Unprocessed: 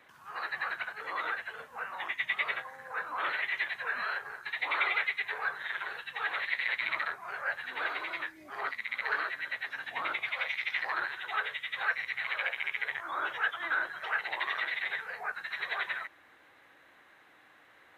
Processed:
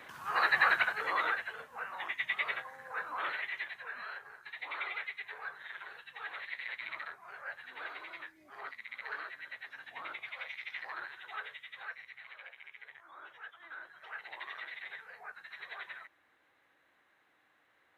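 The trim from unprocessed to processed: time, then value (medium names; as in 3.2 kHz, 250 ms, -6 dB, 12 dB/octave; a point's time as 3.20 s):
0.74 s +8.5 dB
1.66 s -2.5 dB
3.13 s -2.5 dB
3.88 s -9.5 dB
11.45 s -9.5 dB
12.39 s -18 dB
13.61 s -18 dB
14.33 s -11 dB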